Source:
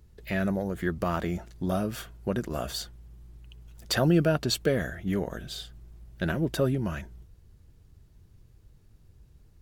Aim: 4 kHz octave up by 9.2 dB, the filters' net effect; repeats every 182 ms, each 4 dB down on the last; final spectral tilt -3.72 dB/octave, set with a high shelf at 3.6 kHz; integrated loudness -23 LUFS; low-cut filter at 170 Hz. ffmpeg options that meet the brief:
-af "highpass=170,highshelf=f=3600:g=4.5,equalizer=f=4000:t=o:g=7.5,aecho=1:1:182|364|546|728|910|1092|1274|1456|1638:0.631|0.398|0.25|0.158|0.0994|0.0626|0.0394|0.0249|0.0157,volume=1.41"

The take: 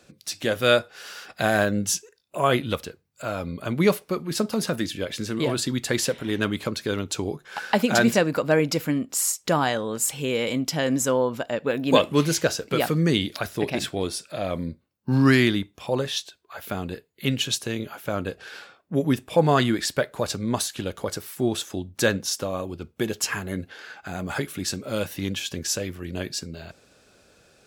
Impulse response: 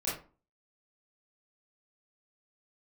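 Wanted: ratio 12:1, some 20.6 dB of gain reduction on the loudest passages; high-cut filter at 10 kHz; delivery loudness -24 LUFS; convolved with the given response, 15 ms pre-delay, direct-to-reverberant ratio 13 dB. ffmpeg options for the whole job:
-filter_complex "[0:a]lowpass=10000,acompressor=threshold=0.02:ratio=12,asplit=2[s0][s1];[1:a]atrim=start_sample=2205,adelay=15[s2];[s1][s2]afir=irnorm=-1:irlink=0,volume=0.126[s3];[s0][s3]amix=inputs=2:normalize=0,volume=5.31"

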